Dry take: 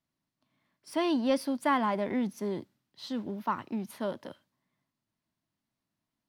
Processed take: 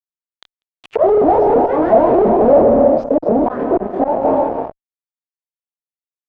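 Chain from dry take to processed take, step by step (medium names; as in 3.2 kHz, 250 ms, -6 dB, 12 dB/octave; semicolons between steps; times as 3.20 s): sawtooth pitch modulation +11.5 st, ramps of 173 ms; in parallel at +2 dB: compression 6:1, threshold -39 dBFS, peak gain reduction 14.5 dB; on the sum: doubling 26 ms -2 dB; gated-style reverb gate 400 ms flat, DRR 10 dB; slow attack 770 ms; delay 248 ms -17 dB; fuzz box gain 51 dB, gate -55 dBFS; touch-sensitive low-pass 650–3500 Hz down, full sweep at -26 dBFS; trim -1 dB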